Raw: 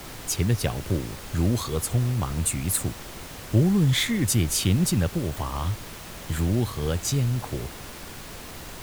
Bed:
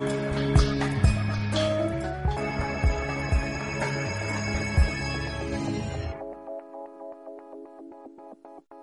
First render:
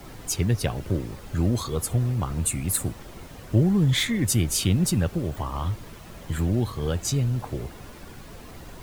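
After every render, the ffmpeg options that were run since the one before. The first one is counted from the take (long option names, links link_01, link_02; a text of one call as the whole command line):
ffmpeg -i in.wav -af "afftdn=noise_reduction=9:noise_floor=-40" out.wav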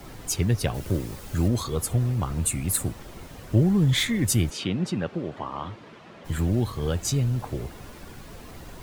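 ffmpeg -i in.wav -filter_complex "[0:a]asettb=1/sr,asplit=3[link_01][link_02][link_03];[link_01]atrim=end=0.744[link_04];[link_02]atrim=start=0.74:end=1.48,asetpts=PTS-STARTPTS,afade=type=in:duration=0.004:curve=qsin,afade=type=out:start_time=0.736:duration=0.004:curve=qsin,highshelf=frequency=5200:gain=8.5[link_05];[link_03]atrim=start=1.476[link_06];[link_04][link_05]acrossfade=duration=0.004:curve1=hsin:curve2=qsin[link_07];[link_07][link_06]acrossfade=duration=0.004:curve1=qsin:curve2=hsin,asplit=3[link_08][link_09][link_10];[link_08]afade=type=out:start_time=4.49:duration=0.02[link_11];[link_09]highpass=200,lowpass=3400,afade=type=in:start_time=4.49:duration=0.02,afade=type=out:start_time=6.24:duration=0.02[link_12];[link_10]afade=type=in:start_time=6.24:duration=0.02[link_13];[link_11][link_12][link_13]amix=inputs=3:normalize=0" out.wav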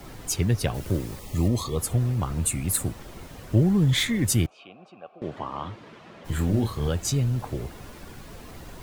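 ffmpeg -i in.wav -filter_complex "[0:a]asettb=1/sr,asplit=3[link_01][link_02][link_03];[link_01]atrim=end=1.194[link_04];[link_02]atrim=start=1.19:end=1.78,asetpts=PTS-STARTPTS,afade=type=in:duration=0.004:curve=qsin,afade=type=out:start_time=0.586:duration=0.004:curve=qsin,asuperstop=centerf=1500:order=12:qfactor=3.4[link_05];[link_03]atrim=start=1.776[link_06];[link_04][link_05]acrossfade=duration=0.004:curve1=hsin:curve2=qsin[link_07];[link_07][link_06]acrossfade=duration=0.004:curve1=qsin:curve2=hsin,asettb=1/sr,asplit=3[link_08][link_09][link_10];[link_08]atrim=end=4.464[link_11];[link_09]atrim=start=4.46:end=5.22,asetpts=PTS-STARTPTS,afade=type=in:duration=0.004:curve=qsin,afade=type=out:start_time=0.756:duration=0.004:curve=qsin,asplit=3[link_12][link_13][link_14];[link_12]bandpass=frequency=730:width_type=q:width=8,volume=0dB[link_15];[link_13]bandpass=frequency=1090:width_type=q:width=8,volume=-6dB[link_16];[link_14]bandpass=frequency=2440:width_type=q:width=8,volume=-9dB[link_17];[link_15][link_16][link_17]amix=inputs=3:normalize=0[link_18];[link_10]atrim=start=5.216[link_19];[link_11][link_18]acrossfade=duration=0.004:curve1=hsin:curve2=qsin[link_20];[link_20][link_19]acrossfade=duration=0.004:curve1=qsin:curve2=hsin,asettb=1/sr,asplit=3[link_21][link_22][link_23];[link_21]atrim=end=6.254[link_24];[link_22]atrim=start=6.25:end=6.88,asetpts=PTS-STARTPTS,afade=type=in:duration=0.004:curve=qsin,afade=type=out:start_time=0.626:duration=0.004:curve=qsin,asplit=2[link_25][link_26];[link_26]adelay=28,volume=-6dB[link_27];[link_25][link_27]amix=inputs=2:normalize=0,atrim=end_sample=27783[link_28];[link_23]atrim=start=6.876[link_29];[link_24][link_28]acrossfade=duration=0.004:curve1=hsin:curve2=qsin[link_30];[link_30][link_29]acrossfade=duration=0.004:curve1=qsin:curve2=hsin" out.wav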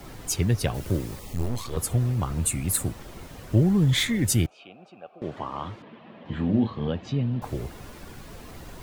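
ffmpeg -i in.wav -filter_complex "[0:a]asettb=1/sr,asplit=3[link_01][link_02][link_03];[link_01]atrim=end=1.334[link_04];[link_02]atrim=start=1.33:end=1.77,asetpts=PTS-STARTPTS,afade=type=in:duration=0.004:curve=qsin,afade=type=out:start_time=0.436:duration=0.004:curve=qsin,aeval=exprs='max(val(0),0)':channel_layout=same[link_05];[link_03]atrim=start=1.766[link_06];[link_04][link_05]acrossfade=duration=0.004:curve1=hsin:curve2=qsin[link_07];[link_07][link_06]acrossfade=duration=0.004:curve1=qsin:curve2=hsin,asettb=1/sr,asplit=3[link_08][link_09][link_10];[link_08]atrim=end=4.144[link_11];[link_09]atrim=start=4.14:end=5.11,asetpts=PTS-STARTPTS,afade=type=in:duration=0.004:curve=qsin,afade=type=out:start_time=0.966:duration=0.004:curve=qsin,bandreject=frequency=1100:width=6.9[link_12];[link_10]atrim=start=5.106[link_13];[link_11][link_12]acrossfade=duration=0.004:curve1=hsin:curve2=qsin[link_14];[link_14][link_13]acrossfade=duration=0.004:curve1=qsin:curve2=hsin,asettb=1/sr,asplit=3[link_15][link_16][link_17];[link_15]atrim=end=5.824[link_18];[link_16]atrim=start=5.82:end=7.42,asetpts=PTS-STARTPTS,afade=type=in:duration=0.004:curve=qsin,afade=type=out:start_time=1.596:duration=0.004:curve=qsin,highpass=130,equalizer=frequency=230:width_type=q:width=4:gain=7,equalizer=frequency=380:width_type=q:width=4:gain=-3,equalizer=frequency=1400:width_type=q:width=4:gain=-7,equalizer=frequency=2200:width_type=q:width=4:gain=-4,lowpass=frequency=3300:width=0.5412,lowpass=frequency=3300:width=1.3066[link_19];[link_17]atrim=start=7.416[link_20];[link_18][link_19]acrossfade=duration=0.004:curve1=hsin:curve2=qsin[link_21];[link_21][link_20]acrossfade=duration=0.004:curve1=qsin:curve2=hsin" out.wav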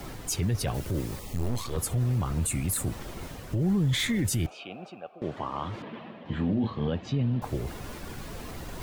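ffmpeg -i in.wav -af "alimiter=limit=-19.5dB:level=0:latency=1:release=11,areverse,acompressor=mode=upward:threshold=-32dB:ratio=2.5,areverse" out.wav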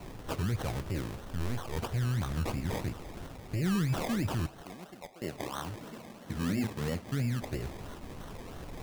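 ffmpeg -i in.wav -af "acrusher=samples=25:mix=1:aa=0.000001:lfo=1:lforange=15:lforate=3,flanger=delay=9.9:depth=1.3:regen=-84:speed=0.96:shape=sinusoidal" out.wav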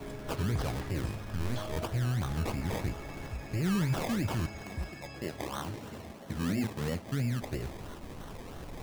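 ffmpeg -i in.wav -i bed.wav -filter_complex "[1:a]volume=-16.5dB[link_01];[0:a][link_01]amix=inputs=2:normalize=0" out.wav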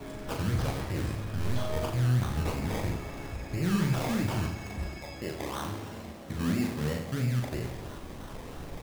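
ffmpeg -i in.wav -af "aecho=1:1:40|88|145.6|214.7|297.7:0.631|0.398|0.251|0.158|0.1" out.wav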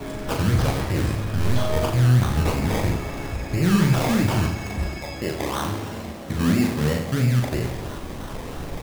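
ffmpeg -i in.wav -af "volume=9dB" out.wav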